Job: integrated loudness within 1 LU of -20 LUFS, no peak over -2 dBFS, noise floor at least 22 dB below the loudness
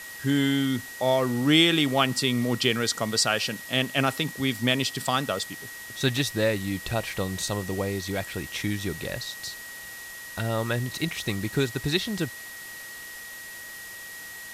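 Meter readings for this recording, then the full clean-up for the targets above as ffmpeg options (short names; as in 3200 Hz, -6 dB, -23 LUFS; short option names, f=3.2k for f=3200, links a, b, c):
steady tone 1900 Hz; tone level -40 dBFS; noise floor -41 dBFS; noise floor target -48 dBFS; loudness -26.0 LUFS; peak -6.5 dBFS; loudness target -20.0 LUFS
-> -af "bandreject=f=1.9k:w=30"
-af "afftdn=nr=7:nf=-41"
-af "volume=6dB,alimiter=limit=-2dB:level=0:latency=1"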